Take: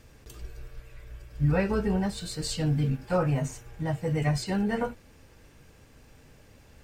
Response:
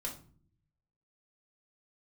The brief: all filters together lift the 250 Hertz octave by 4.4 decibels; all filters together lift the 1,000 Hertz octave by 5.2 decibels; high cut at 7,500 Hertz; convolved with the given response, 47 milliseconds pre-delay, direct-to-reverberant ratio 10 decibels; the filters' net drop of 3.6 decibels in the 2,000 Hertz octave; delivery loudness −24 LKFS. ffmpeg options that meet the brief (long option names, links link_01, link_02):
-filter_complex "[0:a]lowpass=7500,equalizer=frequency=250:width_type=o:gain=6.5,equalizer=frequency=1000:width_type=o:gain=8.5,equalizer=frequency=2000:width_type=o:gain=-8,asplit=2[link_01][link_02];[1:a]atrim=start_sample=2205,adelay=47[link_03];[link_02][link_03]afir=irnorm=-1:irlink=0,volume=-10dB[link_04];[link_01][link_04]amix=inputs=2:normalize=0,volume=0.5dB"